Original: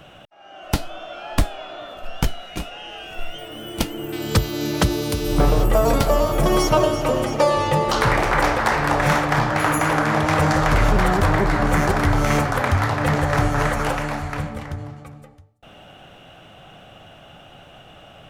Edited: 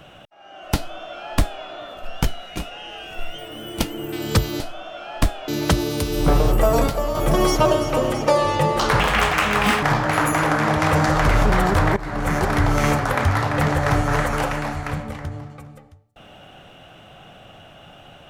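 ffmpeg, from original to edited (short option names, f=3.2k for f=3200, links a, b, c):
-filter_complex "[0:a]asplit=8[a][b][c][d][e][f][g][h];[a]atrim=end=4.602[i];[b]atrim=start=0.758:end=1.642[j];[c]atrim=start=4.598:end=6.002[k];[d]atrim=start=5.998:end=6.272,asetpts=PTS-STARTPTS,volume=-5.5dB[l];[e]atrim=start=6.268:end=8.124[m];[f]atrim=start=8.12:end=9.29,asetpts=PTS-STARTPTS,asetrate=62622,aresample=44100[n];[g]atrim=start=9.286:end=11.43,asetpts=PTS-STARTPTS,afade=t=out:st=2.14:d=0.004:c=hsin:silence=0.149624[o];[h]atrim=start=11.43,asetpts=PTS-STARTPTS,afade=t=in:d=0.77:c=qsin:silence=0.149624[p];[i][j]acrossfade=d=0.004:c1=hsin:c2=hsin[q];[q][k]acrossfade=d=0.004:c1=hsin:c2=hsin[r];[r][l]acrossfade=d=0.004:c1=hsin:c2=hsin[s];[s][m]acrossfade=d=0.004:c1=hsin:c2=hsin[t];[t][n]acrossfade=d=0.004:c1=hsin:c2=hsin[u];[o][p]concat=n=2:v=0:a=1[v];[u][v]acrossfade=d=0.004:c1=hsin:c2=hsin"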